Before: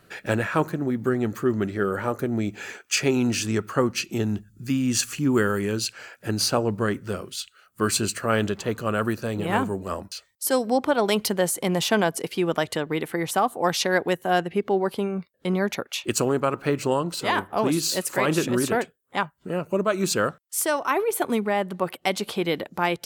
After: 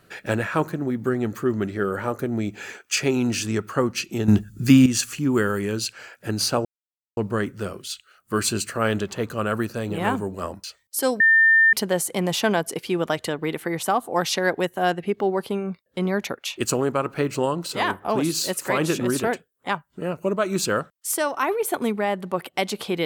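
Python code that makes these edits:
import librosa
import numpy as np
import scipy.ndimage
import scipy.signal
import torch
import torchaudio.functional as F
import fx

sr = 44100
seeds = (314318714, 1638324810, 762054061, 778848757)

y = fx.edit(x, sr, fx.clip_gain(start_s=4.28, length_s=0.58, db=11.0),
    fx.insert_silence(at_s=6.65, length_s=0.52),
    fx.bleep(start_s=10.68, length_s=0.53, hz=1800.0, db=-12.0), tone=tone)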